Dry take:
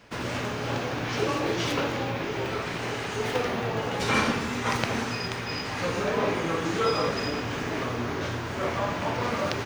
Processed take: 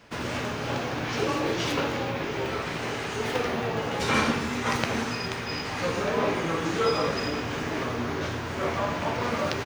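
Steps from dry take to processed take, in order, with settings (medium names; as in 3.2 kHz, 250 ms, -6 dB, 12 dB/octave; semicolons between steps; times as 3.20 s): doubling 13 ms -12.5 dB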